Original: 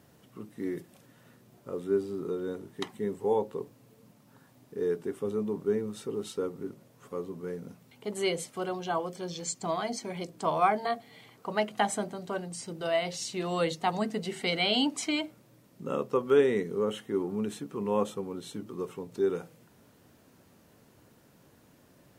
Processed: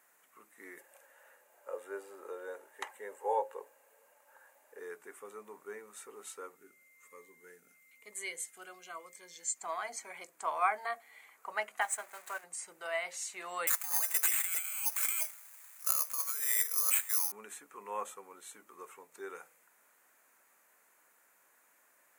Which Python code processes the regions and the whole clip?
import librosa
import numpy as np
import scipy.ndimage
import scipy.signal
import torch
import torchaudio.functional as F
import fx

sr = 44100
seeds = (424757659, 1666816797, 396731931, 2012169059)

y = fx.chain(x, sr, fx.highpass(hz=290.0, slope=12),
    fx.peak_eq(hz=600.0, db=10.0, octaves=0.34),
    fx.small_body(hz=(510.0, 850.0, 1600.0, 2800.0), ring_ms=35, db=11), at=(0.78, 4.79))
y = fx.peak_eq(y, sr, hz=850.0, db=-9.5, octaves=1.4, at=(6.55, 9.55), fade=0.02)
y = fx.dmg_tone(y, sr, hz=2100.0, level_db=-61.0, at=(6.55, 9.55), fade=0.02)
y = fx.notch_cascade(y, sr, direction='falling', hz=1.0, at=(6.55, 9.55), fade=0.02)
y = fx.chain(y, sr, fx.zero_step(step_db=-37.0),
    fx.highpass(hz=630.0, slope=6),
    fx.transient(attack_db=1, sustain_db=-8), at=(11.81, 12.44))
y = fx.chain(y, sr, fx.highpass(hz=860.0, slope=12),
    fx.over_compress(threshold_db=-41.0, ratio=-1.0),
    fx.resample_bad(factor=8, down='none', up='zero_stuff'), at=(13.67, 17.32))
y = scipy.signal.sosfilt(scipy.signal.butter(2, 1200.0, 'highpass', fs=sr, output='sos'), y)
y = fx.band_shelf(y, sr, hz=4000.0, db=-12.0, octaves=1.2)
y = y * librosa.db_to_amplitude(1.0)